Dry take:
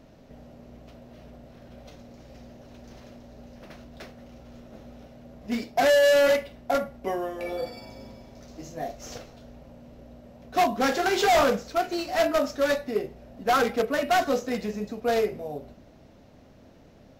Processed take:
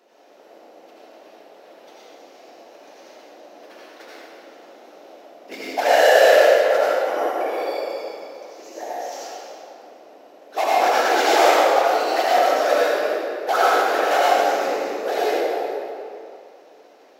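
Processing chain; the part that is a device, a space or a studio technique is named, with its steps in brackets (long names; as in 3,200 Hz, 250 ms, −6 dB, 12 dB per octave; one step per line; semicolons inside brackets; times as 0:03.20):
whispering ghost (random phases in short frames; high-pass filter 400 Hz 24 dB per octave; convolution reverb RT60 2.4 s, pre-delay 69 ms, DRR −7.5 dB)
level −1 dB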